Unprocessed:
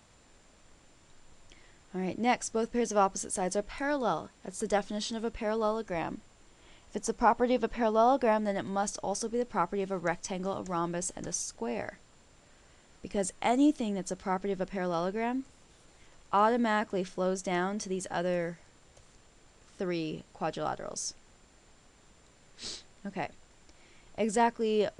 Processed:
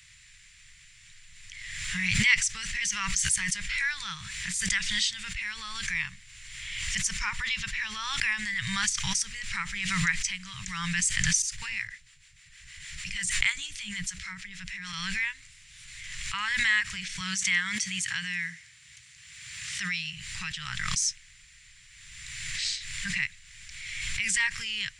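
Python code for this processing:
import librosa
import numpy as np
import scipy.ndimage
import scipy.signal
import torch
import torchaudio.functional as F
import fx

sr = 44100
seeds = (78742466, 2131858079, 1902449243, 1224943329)

y = fx.harmonic_tremolo(x, sr, hz=6.5, depth_pct=70, crossover_hz=470.0, at=(11.42, 14.93))
y = fx.highpass(y, sr, hz=97.0, slope=12, at=(17.2, 20.17))
y = scipy.signal.sosfilt(scipy.signal.cheby2(4, 40, [240.0, 760.0], 'bandstop', fs=sr, output='sos'), y)
y = fx.high_shelf_res(y, sr, hz=1600.0, db=7.0, q=3.0)
y = fx.pre_swell(y, sr, db_per_s=32.0)
y = F.gain(torch.from_numpy(y), 1.5).numpy()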